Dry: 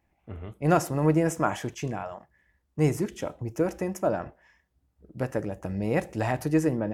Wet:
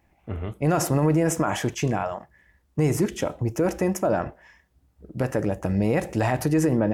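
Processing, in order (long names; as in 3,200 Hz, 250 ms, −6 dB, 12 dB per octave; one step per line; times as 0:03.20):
brickwall limiter −21 dBFS, peak gain reduction 11 dB
level +8 dB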